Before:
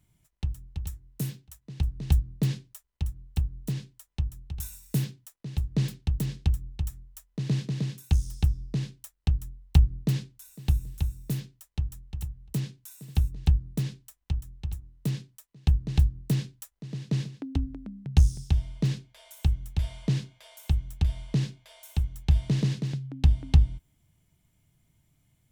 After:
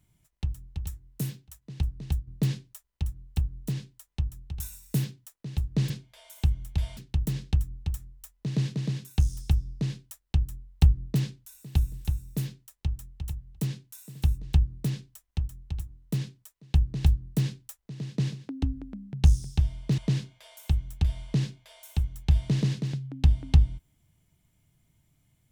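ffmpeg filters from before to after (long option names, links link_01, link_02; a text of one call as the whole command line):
ffmpeg -i in.wav -filter_complex "[0:a]asplit=5[link_01][link_02][link_03][link_04][link_05];[link_01]atrim=end=2.27,asetpts=PTS-STARTPTS,afade=type=out:start_time=1.77:duration=0.5:silence=0.298538[link_06];[link_02]atrim=start=2.27:end=5.902,asetpts=PTS-STARTPTS,afade=type=in:duration=0.004:curve=hsin:silence=0.298538[link_07];[link_03]atrim=start=18.908:end=19.982[link_08];[link_04]atrim=start=5.898:end=18.912[link_09];[link_05]atrim=start=19.978[link_10];[link_06][link_07]concat=n=2:v=0:a=1[link_11];[link_11][link_08]acrossfade=duration=0.004:curve1=hsin:curve2=hsin[link_12];[link_12][link_09]acrossfade=duration=0.004:curve1=hsin:curve2=hsin[link_13];[link_13][link_10]acrossfade=duration=0.004:curve1=hsin:curve2=hsin" out.wav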